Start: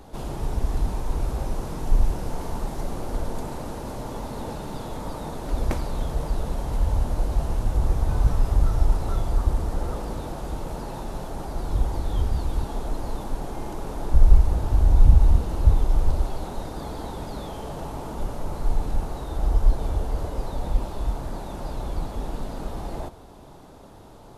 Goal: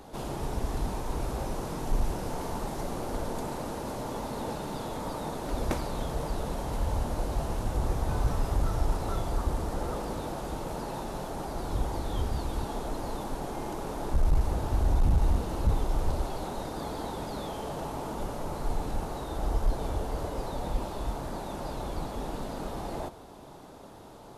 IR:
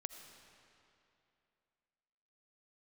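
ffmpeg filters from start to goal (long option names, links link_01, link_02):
-af "lowshelf=frequency=100:gain=-10,volume=17.5dB,asoftclip=hard,volume=-17.5dB"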